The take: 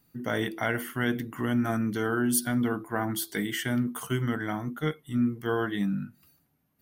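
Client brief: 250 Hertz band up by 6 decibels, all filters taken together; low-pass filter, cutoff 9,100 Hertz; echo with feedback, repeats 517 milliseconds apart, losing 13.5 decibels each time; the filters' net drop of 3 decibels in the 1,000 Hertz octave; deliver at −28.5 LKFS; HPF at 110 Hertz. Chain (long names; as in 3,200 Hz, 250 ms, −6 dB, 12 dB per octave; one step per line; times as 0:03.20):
high-pass filter 110 Hz
low-pass filter 9,100 Hz
parametric band 250 Hz +7 dB
parametric band 1,000 Hz −5 dB
repeating echo 517 ms, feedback 21%, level −13.5 dB
level −3 dB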